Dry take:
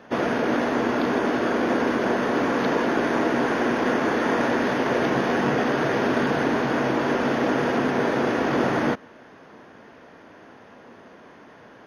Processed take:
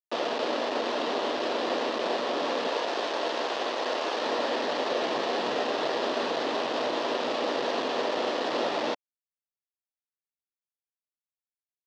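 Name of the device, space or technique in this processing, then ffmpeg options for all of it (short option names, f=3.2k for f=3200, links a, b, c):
hand-held game console: -filter_complex "[0:a]asettb=1/sr,asplit=3[a][b][c];[a]atrim=end=2.684[d];[b]atrim=start=2.68:end=4.22,asetpts=PTS-STARTPTS,afade=t=in:d=0.004:c=qsin,afade=t=out:st=1.536:d=0.004:c=qsin,bass=f=250:g=-14,treble=f=4k:g=9[e];[c]atrim=start=4.216[f];[d][e]acrossfade=d=0.004:c1=hsin:c2=qsin[g];[g][f]acrossfade=d=0.004:c1=qsin:c2=hsin,acrusher=bits=3:mix=0:aa=0.000001,highpass=420,equalizer=f=580:t=q:w=4:g=4,equalizer=f=1.5k:t=q:w=4:g=-8,equalizer=f=2.2k:t=q:w=4:g=-7,lowpass=f=4.6k:w=0.5412,lowpass=f=4.6k:w=1.3066,volume=-4.5dB"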